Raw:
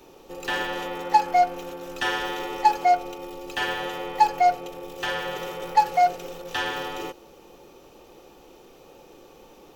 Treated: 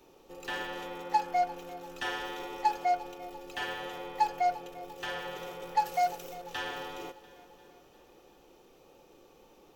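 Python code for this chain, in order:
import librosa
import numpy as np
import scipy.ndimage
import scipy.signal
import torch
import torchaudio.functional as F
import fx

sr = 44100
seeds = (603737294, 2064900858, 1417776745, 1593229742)

p1 = fx.high_shelf(x, sr, hz=fx.line((5.84, 4600.0), (6.33, 6600.0)), db=11.0, at=(5.84, 6.33), fade=0.02)
p2 = p1 + fx.echo_feedback(p1, sr, ms=347, feedback_pct=58, wet_db=-19.0, dry=0)
y = F.gain(torch.from_numpy(p2), -9.0).numpy()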